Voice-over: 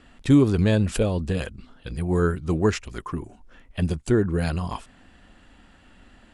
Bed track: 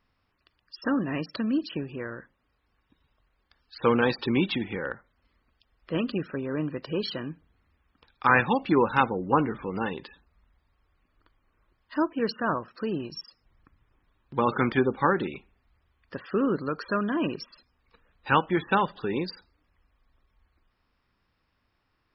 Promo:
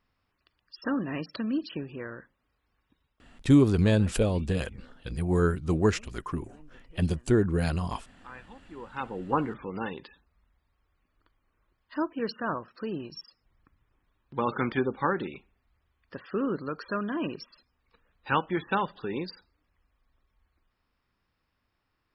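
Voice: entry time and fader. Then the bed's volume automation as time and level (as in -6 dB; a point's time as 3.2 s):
3.20 s, -2.5 dB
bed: 2.91 s -3 dB
3.91 s -26 dB
8.69 s -26 dB
9.21 s -4 dB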